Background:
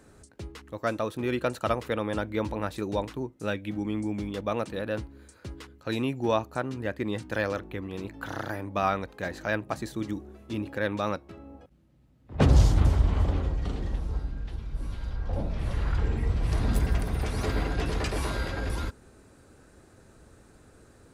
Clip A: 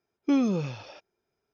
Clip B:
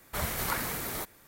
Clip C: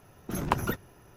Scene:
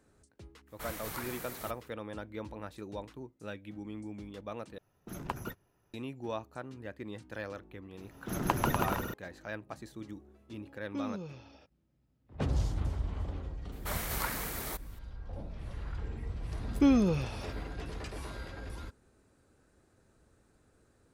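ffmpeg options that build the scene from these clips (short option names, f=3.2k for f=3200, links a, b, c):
-filter_complex "[2:a]asplit=2[a][b];[3:a]asplit=2[c][d];[1:a]asplit=2[e][f];[0:a]volume=-12dB[g];[c]agate=range=-7dB:threshold=-47dB:ratio=3:release=35:detection=peak[h];[d]aecho=1:1:140|245|323.8|382.8|427.1|460.3|485.2:0.794|0.631|0.501|0.398|0.316|0.251|0.2[i];[g]asplit=2[j][k];[j]atrim=end=4.784[l];[h]atrim=end=1.16,asetpts=PTS-STARTPTS,volume=-10.5dB[m];[k]atrim=start=5.936[n];[a]atrim=end=1.27,asetpts=PTS-STARTPTS,volume=-9.5dB,afade=t=in:d=0.05,afade=t=out:st=1.22:d=0.05,adelay=660[o];[i]atrim=end=1.16,asetpts=PTS-STARTPTS,volume=-3.5dB,afade=t=in:d=0.004:c=hsin,afade=t=out:st=1.156:d=0.004:c=hsin,adelay=7980[p];[e]atrim=end=1.53,asetpts=PTS-STARTPTS,volume=-14dB,afade=t=in:d=0.004:c=hsin,afade=t=out:st=1.526:d=0.004:c=hsin,adelay=470106S[q];[b]atrim=end=1.27,asetpts=PTS-STARTPTS,volume=-3.5dB,afade=t=in:d=0.004:c=hsin,afade=t=out:st=1.266:d=0.004:c=hsin,adelay=13720[r];[f]atrim=end=1.53,asetpts=PTS-STARTPTS,volume=-0.5dB,afade=t=in:d=0.004:c=hsin,afade=t=out:st=1.526:d=0.004:c=hsin,adelay=16530[s];[l][m]acrossfade=d=0.004:c1=hsin:c2=hsin[t];[t][n]acrossfade=d=0.004:c1=hsin:c2=hsin[u];[u][o][p][q][r][s]amix=inputs=6:normalize=0"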